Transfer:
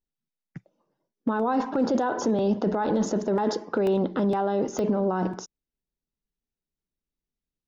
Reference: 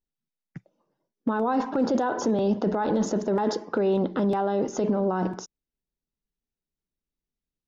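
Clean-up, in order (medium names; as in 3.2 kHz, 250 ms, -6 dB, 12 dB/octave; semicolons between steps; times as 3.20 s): interpolate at 0.65/3.87/4.79 s, 1.3 ms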